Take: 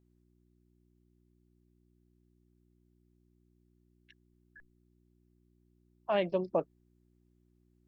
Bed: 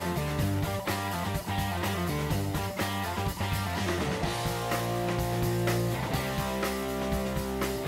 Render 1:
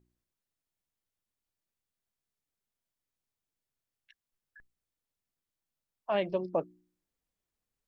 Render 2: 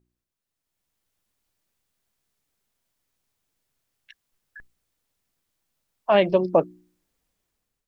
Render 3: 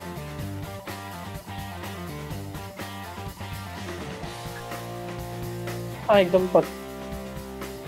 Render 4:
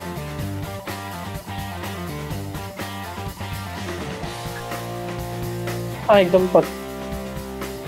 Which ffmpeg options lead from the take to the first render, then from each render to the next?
-af "bandreject=f=60:t=h:w=4,bandreject=f=120:t=h:w=4,bandreject=f=180:t=h:w=4,bandreject=f=240:t=h:w=4,bandreject=f=300:t=h:w=4,bandreject=f=360:t=h:w=4"
-af "dynaudnorm=f=300:g=5:m=12dB"
-filter_complex "[1:a]volume=-5dB[a];[0:a][a]amix=inputs=2:normalize=0"
-af "volume=5.5dB,alimiter=limit=-3dB:level=0:latency=1"

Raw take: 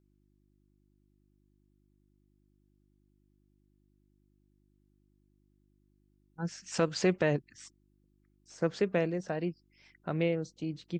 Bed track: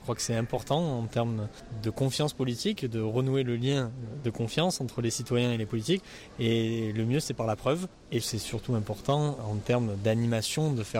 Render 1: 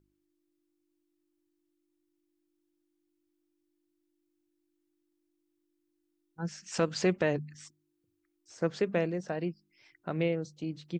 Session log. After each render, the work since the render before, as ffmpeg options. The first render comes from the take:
-af "bandreject=f=50:t=h:w=4,bandreject=f=100:t=h:w=4,bandreject=f=150:t=h:w=4,bandreject=f=200:t=h:w=4,bandreject=f=250:t=h:w=4"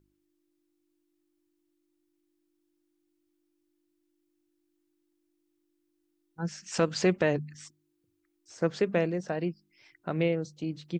-af "volume=2.5dB"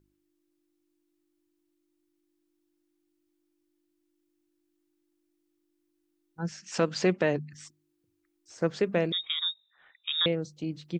-filter_complex "[0:a]asettb=1/sr,asplit=3[a][b][c];[a]atrim=end=6.514[d];[b]atrim=start=6.51:end=7.53,asetpts=PTS-STARTPTS,afade=t=in:d=0.004:c=qsin,afade=t=out:st=1.016:d=0.004:c=qsin,highpass=120,lowpass=7.6k[e];[c]atrim=start=7.526[f];[d][e]acrossfade=d=0.004:c1=hsin:c2=qsin[g];[g][f]acrossfade=d=0.004:c1=qsin:c2=hsin,asettb=1/sr,asplit=3[h][i][j];[h]atrim=end=9.124[k];[i]atrim=start=9.12:end=10.26,asetpts=PTS-STARTPTS,afade=t=in:d=0.004:c=qsin,afade=t=out:st=1.136:d=0.004:c=qsin,lowpass=f=3.3k:t=q:w=0.5098,lowpass=f=3.3k:t=q:w=0.6013,lowpass=f=3.3k:t=q:w=0.9,lowpass=f=3.3k:t=q:w=2.563,afreqshift=-3900[l];[j]atrim=start=10.256[m];[k][l]acrossfade=d=0.004:c1=hsin:c2=qsin[n];[n][m]acrossfade=d=0.004:c1=qsin:c2=hsin"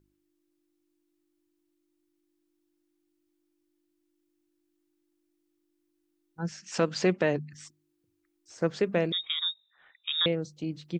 -af anull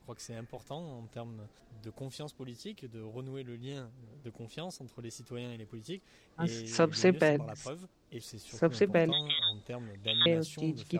-filter_complex "[1:a]volume=-15dB[a];[0:a][a]amix=inputs=2:normalize=0"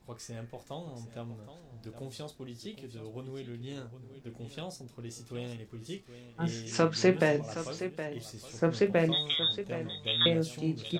-filter_complex "[0:a]asplit=2[a][b];[b]adelay=25,volume=-10dB[c];[a][c]amix=inputs=2:normalize=0,aecho=1:1:43|768:0.2|0.266"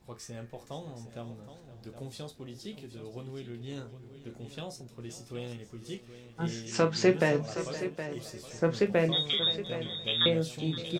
-filter_complex "[0:a]asplit=2[a][b];[b]adelay=14,volume=-11dB[c];[a][c]amix=inputs=2:normalize=0,aecho=1:1:519|1038:0.168|0.0386"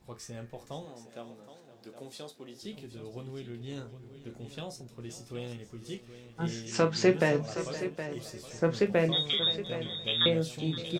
-filter_complex "[0:a]asettb=1/sr,asplit=3[a][b][c];[a]atrim=end=0.854[d];[b]atrim=start=0.85:end=2.62,asetpts=PTS-STARTPTS,afade=t=in:d=0.004:c=qsin,afade=t=out:st=1.766:d=0.004:c=qsin,highpass=260[e];[c]atrim=start=2.616[f];[d][e]acrossfade=d=0.004:c1=hsin:c2=qsin[g];[g][f]acrossfade=d=0.004:c1=qsin:c2=hsin"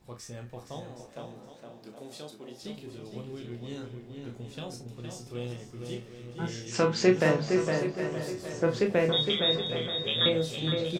-filter_complex "[0:a]asplit=2[a][b];[b]adelay=33,volume=-7dB[c];[a][c]amix=inputs=2:normalize=0,asplit=2[d][e];[e]adelay=462,lowpass=f=2.7k:p=1,volume=-5dB,asplit=2[f][g];[g]adelay=462,lowpass=f=2.7k:p=1,volume=0.36,asplit=2[h][i];[i]adelay=462,lowpass=f=2.7k:p=1,volume=0.36,asplit=2[j][k];[k]adelay=462,lowpass=f=2.7k:p=1,volume=0.36[l];[d][f][h][j][l]amix=inputs=5:normalize=0"

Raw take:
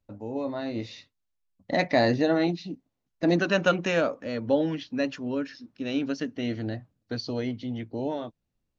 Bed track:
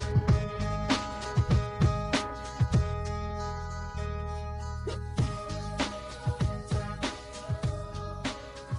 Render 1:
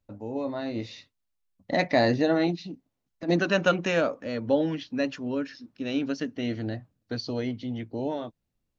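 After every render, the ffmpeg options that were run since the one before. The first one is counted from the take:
-filter_complex "[0:a]asplit=3[a][b][c];[a]afade=t=out:st=2.55:d=0.02[d];[b]acompressor=threshold=-33dB:ratio=4:attack=3.2:release=140:knee=1:detection=peak,afade=t=in:st=2.55:d=0.02,afade=t=out:st=3.28:d=0.02[e];[c]afade=t=in:st=3.28:d=0.02[f];[d][e][f]amix=inputs=3:normalize=0"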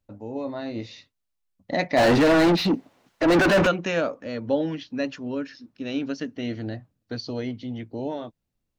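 -filter_complex "[0:a]asplit=3[a][b][c];[a]afade=t=out:st=1.96:d=0.02[d];[b]asplit=2[e][f];[f]highpass=f=720:p=1,volume=37dB,asoftclip=type=tanh:threshold=-10.5dB[g];[e][g]amix=inputs=2:normalize=0,lowpass=f=1.7k:p=1,volume=-6dB,afade=t=in:st=1.96:d=0.02,afade=t=out:st=3.66:d=0.02[h];[c]afade=t=in:st=3.66:d=0.02[i];[d][h][i]amix=inputs=3:normalize=0"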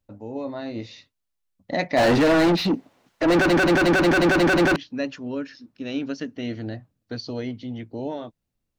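-filter_complex "[0:a]asplit=9[a][b][c][d][e][f][g][h][i];[a]atrim=end=3.502[j];[b]atrim=start=3.318:end=3.502[k];[c]atrim=start=3.318:end=3.502[l];[d]atrim=start=3.318:end=3.502[m];[e]atrim=start=3.318:end=3.502[n];[f]atrim=start=3.318:end=3.502[o];[g]atrim=start=3.318:end=3.502[p];[h]atrim=start=3.318:end=3.502[q];[i]atrim=start=4.758[r];[j][k]acrossfade=d=0.004:c1=hsin:c2=hsin[s];[s][l]acrossfade=d=0.004:c1=hsin:c2=hsin[t];[t][m]acrossfade=d=0.004:c1=hsin:c2=hsin[u];[u][n]acrossfade=d=0.004:c1=hsin:c2=hsin[v];[v][o]acrossfade=d=0.004:c1=hsin:c2=hsin[w];[w][p]acrossfade=d=0.004:c1=hsin:c2=hsin[x];[x][q]acrossfade=d=0.004:c1=hsin:c2=hsin[y];[y][r]acrossfade=d=0.004:c1=hsin:c2=hsin"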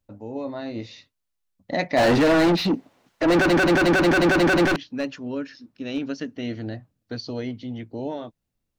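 -filter_complex "[0:a]asettb=1/sr,asplit=3[a][b][c];[a]atrim=end=4.654[d];[b]atrim=start=4.65:end=6.09,asetpts=PTS-STARTPTS,afade=t=in:d=0.004:c=qsin,afade=t=out:st=1.436:d=0.004:c=qsin,aeval=exprs='clip(val(0),-1,0.0794)':c=same[e];[c]atrim=start=6.086[f];[d][e]acrossfade=d=0.004:c1=hsin:c2=qsin[g];[g][f]acrossfade=d=0.004:c1=qsin:c2=hsin"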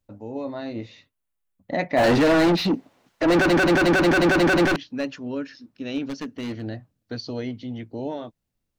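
-filter_complex "[0:a]asettb=1/sr,asplit=3[a][b][c];[a]atrim=end=0.734[d];[b]atrim=start=0.73:end=2.04,asetpts=PTS-STARTPTS,afade=t=in:d=0.004:c=qsin,afade=t=out:st=1.306:d=0.004:c=qsin,equalizer=f=5.1k:t=o:w=1:g=-9.5[e];[c]atrim=start=2.036[f];[d][e]acrossfade=d=0.004:c1=hsin:c2=qsin[g];[g][f]acrossfade=d=0.004:c1=qsin:c2=hsin,asettb=1/sr,asplit=3[h][i][j];[h]atrim=end=6.054[k];[i]atrim=start=6.05:end=6.62,asetpts=PTS-STARTPTS,afade=t=in:d=0.004:c=qsin,afade=t=out:st=0.566:d=0.004:c=qsin,aeval=exprs='0.0631*(abs(mod(val(0)/0.0631+3,4)-2)-1)':c=same[l];[j]atrim=start=6.616[m];[k][l]acrossfade=d=0.004:c1=hsin:c2=qsin[n];[n][m]acrossfade=d=0.004:c1=qsin:c2=hsin"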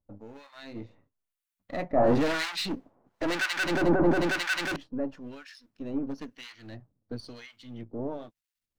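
-filter_complex "[0:a]aeval=exprs='if(lt(val(0),0),0.447*val(0),val(0))':c=same,acrossover=split=1200[a][b];[a]aeval=exprs='val(0)*(1-1/2+1/2*cos(2*PI*1*n/s))':c=same[c];[b]aeval=exprs='val(0)*(1-1/2-1/2*cos(2*PI*1*n/s))':c=same[d];[c][d]amix=inputs=2:normalize=0"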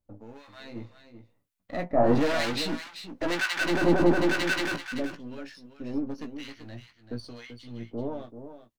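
-filter_complex "[0:a]asplit=2[a][b];[b]adelay=17,volume=-8dB[c];[a][c]amix=inputs=2:normalize=0,aecho=1:1:386:0.299"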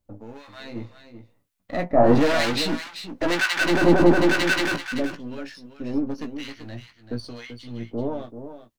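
-af "volume=5.5dB"

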